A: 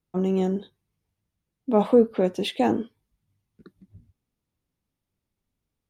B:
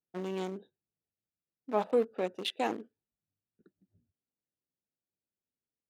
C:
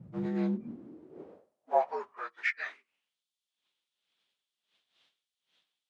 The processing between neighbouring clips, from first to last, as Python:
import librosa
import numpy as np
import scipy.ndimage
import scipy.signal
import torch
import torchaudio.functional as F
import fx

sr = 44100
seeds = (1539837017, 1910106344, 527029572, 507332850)

y1 = fx.wiener(x, sr, points=41)
y1 = fx.rider(y1, sr, range_db=10, speed_s=2.0)
y1 = fx.highpass(y1, sr, hz=1400.0, slope=6)
y2 = fx.partial_stretch(y1, sr, pct=83)
y2 = fx.dmg_wind(y2, sr, seeds[0], corner_hz=150.0, level_db=-48.0)
y2 = fx.filter_sweep_highpass(y2, sr, from_hz=140.0, to_hz=3400.0, start_s=0.2, end_s=3.17, q=4.4)